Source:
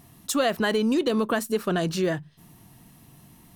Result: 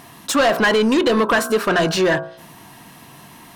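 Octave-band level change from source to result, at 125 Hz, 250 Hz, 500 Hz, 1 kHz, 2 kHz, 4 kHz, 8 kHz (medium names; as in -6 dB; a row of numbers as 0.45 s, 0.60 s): +3.5 dB, +5.5 dB, +8.0 dB, +10.0 dB, +12.0 dB, +9.0 dB, +6.0 dB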